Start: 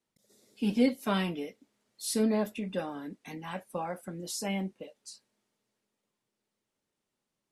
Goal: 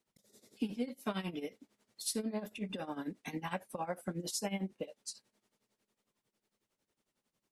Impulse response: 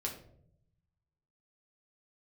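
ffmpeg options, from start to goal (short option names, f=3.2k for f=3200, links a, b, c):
-af "acompressor=threshold=-35dB:ratio=12,tremolo=f=11:d=0.82,volume=4.5dB"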